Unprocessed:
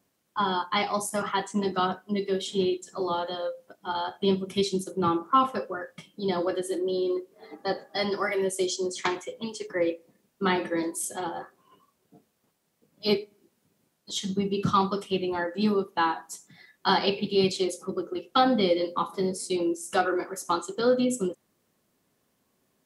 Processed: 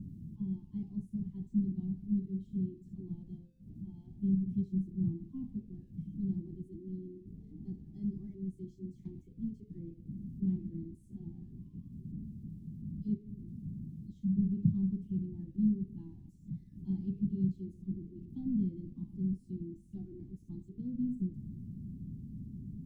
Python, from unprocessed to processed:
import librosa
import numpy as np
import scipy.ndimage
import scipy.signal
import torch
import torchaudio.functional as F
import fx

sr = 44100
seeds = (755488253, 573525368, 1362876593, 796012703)

y = x + 0.5 * 10.0 ** (-28.5 / 20.0) * np.sign(x)
y = scipy.signal.sosfilt(scipy.signal.cheby2(4, 50, 510.0, 'lowpass', fs=sr, output='sos'), y)